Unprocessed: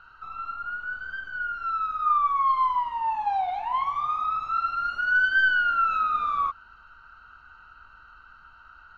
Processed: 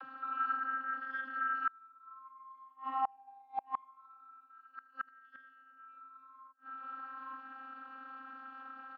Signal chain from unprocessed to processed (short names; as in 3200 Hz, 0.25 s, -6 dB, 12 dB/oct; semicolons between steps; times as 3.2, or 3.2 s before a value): dynamic EQ 1300 Hz, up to +6 dB, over -40 dBFS, Q 5.7; upward compressor, threshold -36 dBFS; high shelf 2000 Hz -10.5 dB; outdoor echo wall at 150 m, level -24 dB; vocoder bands 32, saw 265 Hz; flipped gate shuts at -24 dBFS, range -34 dB; gain +2.5 dB